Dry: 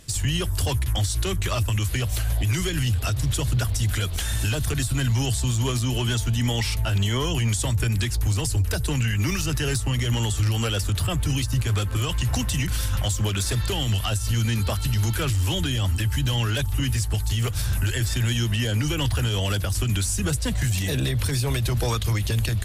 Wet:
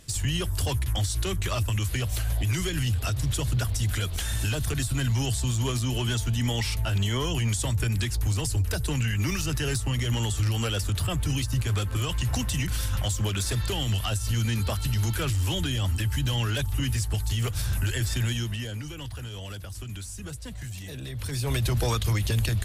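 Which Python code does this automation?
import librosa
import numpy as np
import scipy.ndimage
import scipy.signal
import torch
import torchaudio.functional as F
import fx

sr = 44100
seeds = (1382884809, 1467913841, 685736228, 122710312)

y = fx.gain(x, sr, db=fx.line((18.22, -3.0), (18.92, -13.5), (21.03, -13.5), (21.56, -1.5)))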